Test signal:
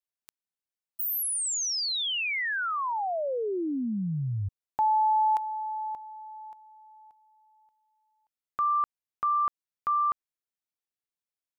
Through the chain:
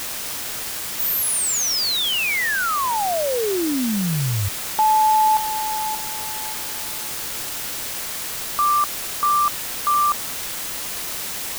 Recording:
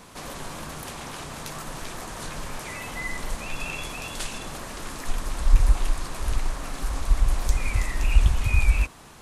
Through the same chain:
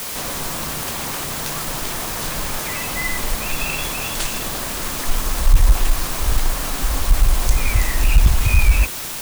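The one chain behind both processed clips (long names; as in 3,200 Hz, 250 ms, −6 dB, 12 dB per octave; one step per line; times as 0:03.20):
bit-depth reduction 6 bits, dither triangular
soft clipping −10.5 dBFS
level +7.5 dB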